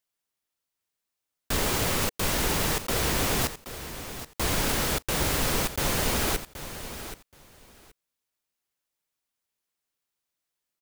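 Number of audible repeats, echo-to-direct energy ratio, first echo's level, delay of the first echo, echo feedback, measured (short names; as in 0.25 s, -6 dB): 2, -12.0 dB, -12.0 dB, 0.776 s, 17%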